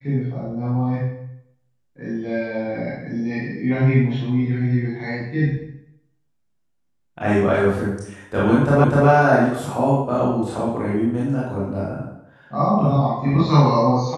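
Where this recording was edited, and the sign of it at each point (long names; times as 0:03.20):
0:08.84: the same again, the last 0.25 s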